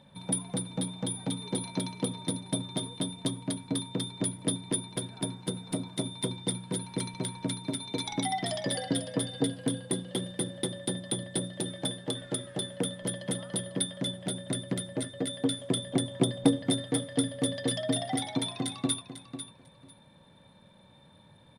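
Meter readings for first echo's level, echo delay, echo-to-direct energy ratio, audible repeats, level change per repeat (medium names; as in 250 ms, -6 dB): -11.0 dB, 497 ms, -11.0 dB, 2, -15.5 dB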